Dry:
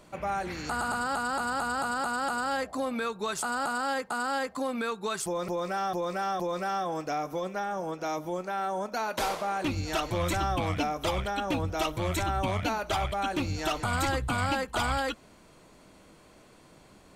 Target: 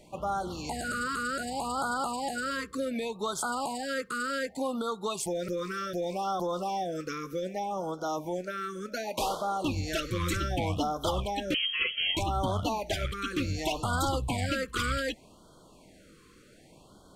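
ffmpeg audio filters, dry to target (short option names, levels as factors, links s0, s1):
-filter_complex "[0:a]asettb=1/sr,asplit=3[s0][s1][s2];[s0]atrim=end=11.544[s3];[s1]atrim=start=11.54:end=12.17,asetpts=PTS-STARTPTS,afade=t=in:d=0.004:c=qsin,afade=t=out:st=0.626:d=0.004:c=qsin,lowpass=f=2800:t=q:w=0.5098,lowpass=f=2800:t=q:w=0.6013,lowpass=f=2800:t=q:w=0.9,lowpass=f=2800:t=q:w=2.563,afreqshift=-3300[s4];[s2]atrim=start=12.166[s5];[s3][s4]acrossfade=d=0.004:c1=hsin:c2=qsin[s6];[s6][s5]acrossfade=d=0.004:c1=qsin:c2=hsin,afftfilt=real='re*(1-between(b*sr/1024,720*pow(2200/720,0.5+0.5*sin(2*PI*0.66*pts/sr))/1.41,720*pow(2200/720,0.5+0.5*sin(2*PI*0.66*pts/sr))*1.41))':imag='im*(1-between(b*sr/1024,720*pow(2200/720,0.5+0.5*sin(2*PI*0.66*pts/sr))/1.41,720*pow(2200/720,0.5+0.5*sin(2*PI*0.66*pts/sr))*1.41))':win_size=1024:overlap=0.75"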